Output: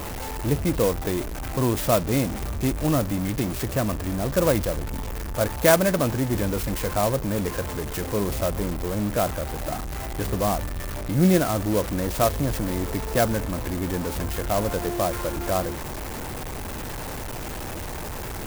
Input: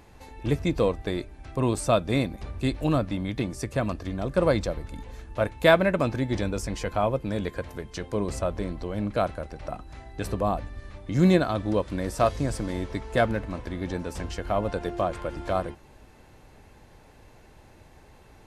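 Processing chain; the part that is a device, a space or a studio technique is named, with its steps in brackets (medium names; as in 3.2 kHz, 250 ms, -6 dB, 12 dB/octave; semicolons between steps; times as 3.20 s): early CD player with a faulty converter (jump at every zero crossing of -27 dBFS; sampling jitter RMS 0.068 ms)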